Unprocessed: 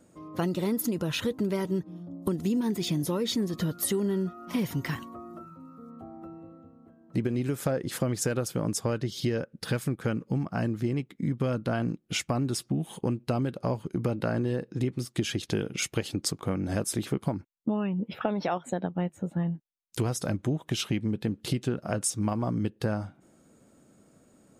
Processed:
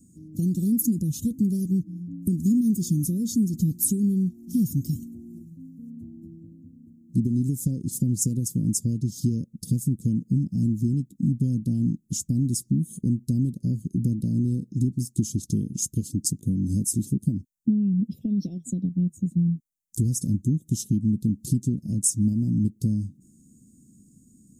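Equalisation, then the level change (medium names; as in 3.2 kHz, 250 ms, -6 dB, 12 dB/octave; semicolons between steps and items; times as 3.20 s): Chebyshev band-stop 240–6700 Hz, order 3; +7.5 dB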